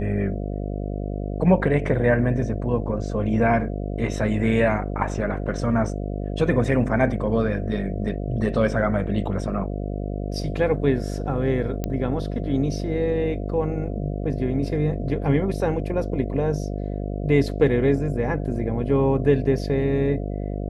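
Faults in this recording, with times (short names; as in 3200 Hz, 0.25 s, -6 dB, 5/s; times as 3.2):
buzz 50 Hz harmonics 14 -28 dBFS
11.84 pop -13 dBFS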